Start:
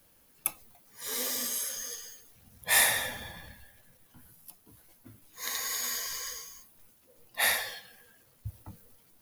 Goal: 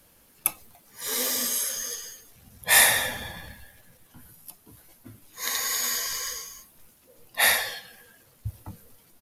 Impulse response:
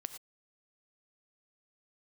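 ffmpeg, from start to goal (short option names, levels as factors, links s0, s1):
-af "aresample=32000,aresample=44100,volume=2"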